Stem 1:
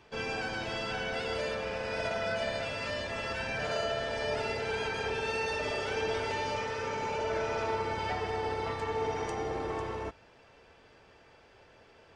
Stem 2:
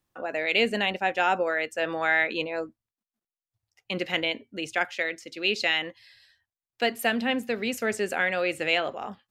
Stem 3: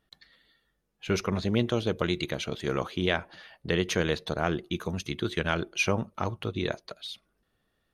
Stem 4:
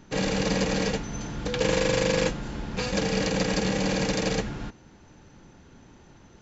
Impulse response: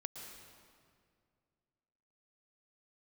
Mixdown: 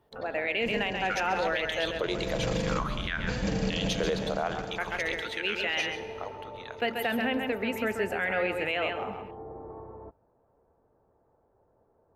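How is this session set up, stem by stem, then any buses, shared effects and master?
-7.5 dB, 0.00 s, no send, no echo send, LPF 1000 Hz 24 dB/oct
-4.0 dB, 0.00 s, muted 1.91–4.78, send -7.5 dB, echo send -4.5 dB, band shelf 6100 Hz -11 dB
5.59 s -4 dB -> 5.86 s -13.5 dB, 0.00 s, send -5 dB, echo send -10.5 dB, LFO high-pass saw up 0.5 Hz 440–3700 Hz
-9.0 dB, 0.50 s, no send, no echo send, low shelf 300 Hz +11.5 dB; auto duck -14 dB, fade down 0.95 s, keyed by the second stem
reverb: on, RT60 2.2 s, pre-delay 0.106 s
echo: echo 0.134 s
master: limiter -18.5 dBFS, peak gain reduction 9.5 dB

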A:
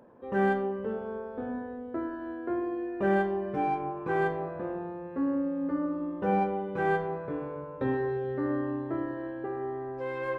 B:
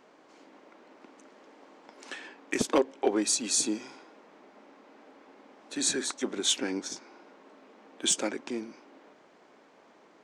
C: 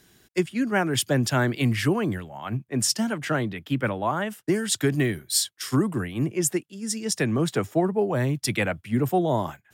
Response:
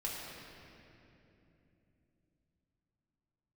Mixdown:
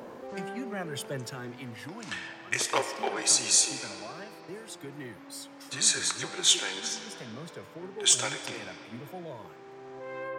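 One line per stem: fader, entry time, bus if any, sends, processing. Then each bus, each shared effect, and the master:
-9.5 dB, 0.00 s, no send, low shelf 180 Hz -7.5 dB; fast leveller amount 70%; auto duck -14 dB, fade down 1.95 s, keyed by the third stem
+2.0 dB, 0.00 s, send -5 dB, HPF 900 Hz 12 dB/oct
1.06 s -6.5 dB -> 1.64 s -13 dB, 0.00 s, send -19.5 dB, limiter -15 dBFS, peak gain reduction 5 dB; HPF 130 Hz; cascading flanger falling 0.6 Hz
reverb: on, RT60 3.0 s, pre-delay 5 ms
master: dry

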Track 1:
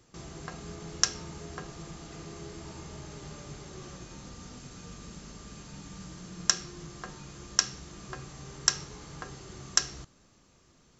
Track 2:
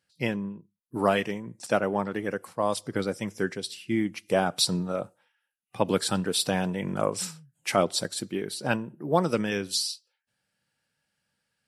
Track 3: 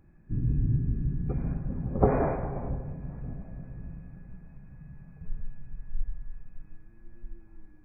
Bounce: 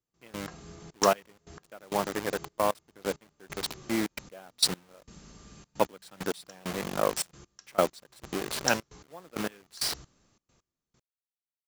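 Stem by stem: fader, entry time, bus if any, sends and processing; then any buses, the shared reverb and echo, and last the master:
-5.0 dB, 0.00 s, no send, dry
+2.5 dB, 0.00 s, no send, level-crossing sampler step -28 dBFS; HPF 430 Hz 6 dB/oct
off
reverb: off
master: step gate "...xxxxx.x...x" 133 bpm -24 dB

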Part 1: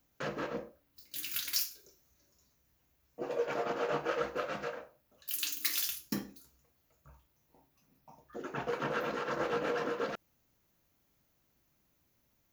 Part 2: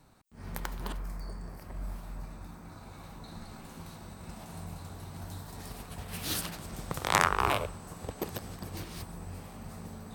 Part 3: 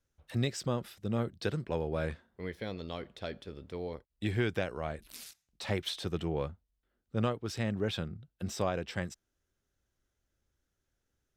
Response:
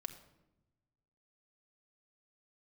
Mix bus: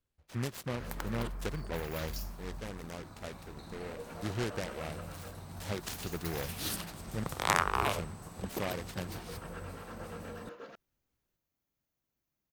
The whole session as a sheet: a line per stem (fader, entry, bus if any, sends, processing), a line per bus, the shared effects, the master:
-13.0 dB, 0.60 s, no send, dry
-3.0 dB, 0.35 s, no send, dry
-4.5 dB, 0.00 s, muted 7.24–7.86, no send, noise-modulated delay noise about 1300 Hz, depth 0.14 ms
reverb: off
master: dry

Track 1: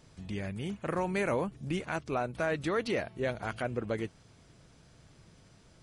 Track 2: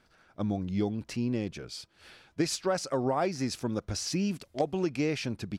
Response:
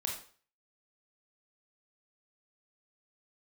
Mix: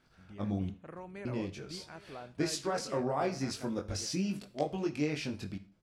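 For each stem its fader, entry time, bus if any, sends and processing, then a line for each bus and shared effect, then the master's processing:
-15.0 dB, 0.00 s, send -16.5 dB, echo send -14.5 dB, gate with hold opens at -49 dBFS; high shelf 3800 Hz -9.5 dB
-3.0 dB, 0.00 s, muted 0.7–1.25, send -9.5 dB, no echo send, chorus 0.41 Hz, delay 20 ms, depth 2.1 ms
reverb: on, RT60 0.45 s, pre-delay 22 ms
echo: echo 0.81 s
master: dry

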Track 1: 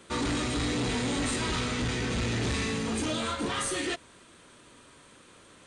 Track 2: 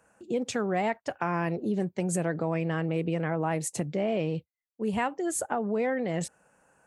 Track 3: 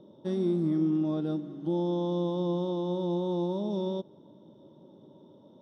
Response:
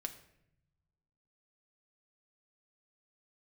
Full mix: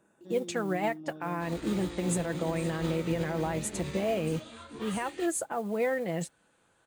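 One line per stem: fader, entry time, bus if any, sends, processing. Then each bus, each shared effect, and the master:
-5.5 dB, 1.30 s, bus A, no send, chorus voices 4, 0.77 Hz, delay 18 ms, depth 4.7 ms
+1.5 dB, 0.00 s, bus A, no send, low shelf 470 Hz -3 dB; comb 6 ms, depth 36%; modulation noise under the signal 27 dB
-8.0 dB, 0.00 s, no bus, no send, limiter -24 dBFS, peak gain reduction 5.5 dB
bus A: 0.0 dB, bell 5500 Hz -4.5 dB 0.27 oct; limiter -19 dBFS, peak gain reduction 7.5 dB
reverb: off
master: upward expander 1.5:1, over -41 dBFS

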